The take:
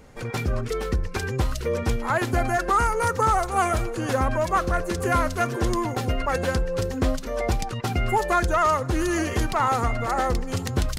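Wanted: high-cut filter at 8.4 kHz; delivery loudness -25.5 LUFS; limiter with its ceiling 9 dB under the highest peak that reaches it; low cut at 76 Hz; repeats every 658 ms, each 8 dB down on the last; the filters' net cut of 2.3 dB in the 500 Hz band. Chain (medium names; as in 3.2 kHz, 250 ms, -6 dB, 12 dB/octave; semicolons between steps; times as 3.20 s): high-pass 76 Hz; low-pass 8.4 kHz; peaking EQ 500 Hz -3 dB; peak limiter -20 dBFS; feedback delay 658 ms, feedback 40%, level -8 dB; trim +3.5 dB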